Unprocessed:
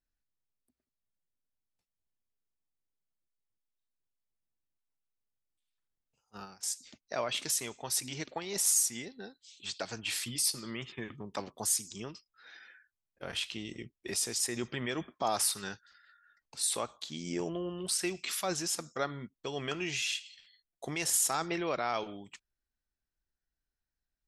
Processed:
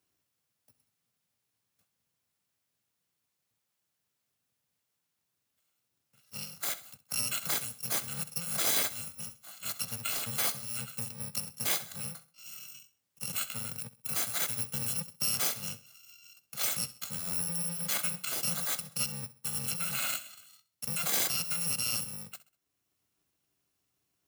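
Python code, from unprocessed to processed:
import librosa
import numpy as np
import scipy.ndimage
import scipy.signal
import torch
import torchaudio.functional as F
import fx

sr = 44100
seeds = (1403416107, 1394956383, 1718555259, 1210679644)

p1 = fx.bit_reversed(x, sr, seeds[0], block=128)
p2 = scipy.signal.sosfilt(scipy.signal.butter(4, 110.0, 'highpass', fs=sr, output='sos'), p1)
p3 = fx.low_shelf(p2, sr, hz=160.0, db=7.5)
p4 = p3 + fx.echo_feedback(p3, sr, ms=65, feedback_pct=34, wet_db=-17.5, dry=0)
p5 = fx.band_squash(p4, sr, depth_pct=40)
y = p5 * librosa.db_to_amplitude(1.0)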